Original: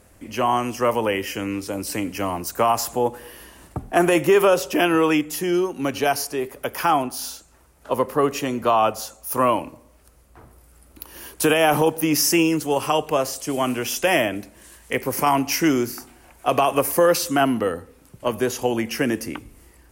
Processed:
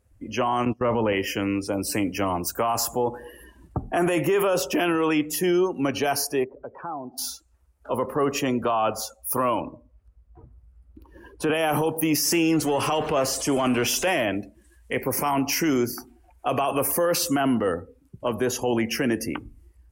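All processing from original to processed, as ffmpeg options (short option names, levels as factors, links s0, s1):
-filter_complex "[0:a]asettb=1/sr,asplit=3[s0][s1][s2];[s0]atrim=end=0.654[s3];[s1]atrim=start=0.65:end=1.13,asetpts=PTS-STARTPTS,afade=t=in:d=0.004:c=qsin,afade=t=out:st=0.476:d=0.004:c=qsin,agate=range=0.0631:threshold=0.0316:ratio=16:release=100:detection=peak,lowshelf=f=340:g=8,acrossover=split=4100[s4][s5];[s5]acompressor=threshold=0.00126:ratio=4:attack=1:release=60[s6];[s4][s6]amix=inputs=2:normalize=0[s7];[s2]atrim=start=1.126[s8];[s3][s7]acrossfade=d=0.004:c1=hsin:c2=qsin[s9];[s9][s8]acrossfade=d=0.004:c1=qsin:c2=hsin,asettb=1/sr,asplit=3[s10][s11][s12];[s10]atrim=end=6.444[s13];[s11]atrim=start=6.44:end=7.18,asetpts=PTS-STARTPTS,afade=t=in:d=0.004:c=qsin,afade=t=out:st=0.736:d=0.004:c=qsin,lowpass=1100,acompressor=threshold=0.00794:ratio=2:attack=3.2:release=140:knee=1:detection=peak[s14];[s12]atrim=start=7.176[s15];[s13][s14]acrossfade=d=0.004:c1=hsin:c2=qsin[s16];[s16][s15]acrossfade=d=0.004:c1=qsin:c2=hsin,asettb=1/sr,asplit=3[s17][s18][s19];[s17]atrim=end=9.604[s20];[s18]atrim=start=9.6:end=11.54,asetpts=PTS-STARTPTS,afade=t=in:d=0.004:c=qsin,afade=t=out:st=1.936:d=0.004:c=qsin,lowpass=f=2000:p=1,aeval=exprs='val(0)+0.00112*(sin(2*PI*50*n/s)+sin(2*PI*2*50*n/s)/2+sin(2*PI*3*50*n/s)/3+sin(2*PI*4*50*n/s)/4+sin(2*PI*5*50*n/s)/5)':c=same[s21];[s19]atrim=start=11.536[s22];[s20][s21]acrossfade=d=0.004:c1=hsin:c2=qsin[s23];[s23][s22]acrossfade=d=0.004:c1=qsin:c2=hsin,asettb=1/sr,asplit=3[s24][s25][s26];[s24]atrim=end=12.244[s27];[s25]atrim=start=12.24:end=14.23,asetpts=PTS-STARTPTS,afade=t=in:d=0.004:c=qsin,afade=t=out:st=1.986:d=0.004:c=qsin,aeval=exprs='val(0)+0.5*0.0398*sgn(val(0))':c=same,highshelf=f=10000:g=-5.5[s28];[s26]atrim=start=14.226[s29];[s27][s28]acrossfade=d=0.004:c1=hsin:c2=qsin[s30];[s30][s29]acrossfade=d=0.004:c1=qsin:c2=hsin,afftdn=nr=21:nf=-40,alimiter=limit=0.15:level=0:latency=1:release=15,volume=1.19"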